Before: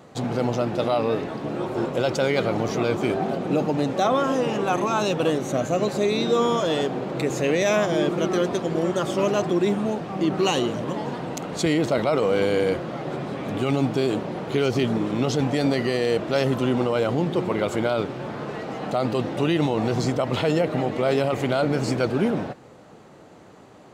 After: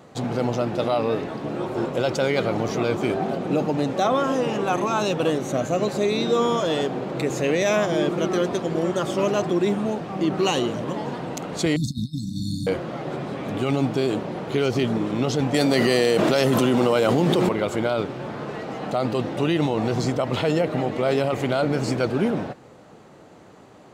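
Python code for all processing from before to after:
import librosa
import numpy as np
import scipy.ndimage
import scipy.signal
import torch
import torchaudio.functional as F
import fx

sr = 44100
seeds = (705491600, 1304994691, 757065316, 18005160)

y = fx.chain(x, sr, fx.comb(ms=1.4, depth=1.0),
    fx.over_compress(threshold_db=-20.0, ratio=-0.5),
    fx.brickwall_bandstop(low_hz=320.0, high_hz=3500.0), at=(11.76, 12.67))
y = fx.chain(y, sr, fx.highpass(hz=130.0, slope=12),
    fx.high_shelf(hz=6100.0, db=10.0),
    fx.env_flatten(amount_pct=100), at=(15.54, 17.49))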